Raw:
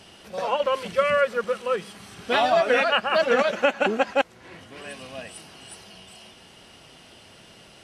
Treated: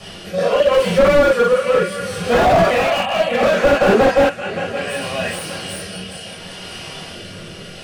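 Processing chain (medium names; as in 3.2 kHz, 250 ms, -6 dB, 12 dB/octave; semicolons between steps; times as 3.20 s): dynamic bell 9.2 kHz, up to +6 dB, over -57 dBFS, Q 2.2; rotary cabinet horn 0.7 Hz; on a send: shuffle delay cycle 758 ms, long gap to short 3:1, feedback 33%, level -19.5 dB; on the sum: reverberation, pre-delay 9 ms, DRR -6.5 dB; in parallel at -0.5 dB: compression, threshold -29 dBFS, peak gain reduction 20.5 dB; 2.70–3.43 s: on the sum: static phaser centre 1.5 kHz, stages 6; slew-rate limiter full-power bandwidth 160 Hz; trim +3 dB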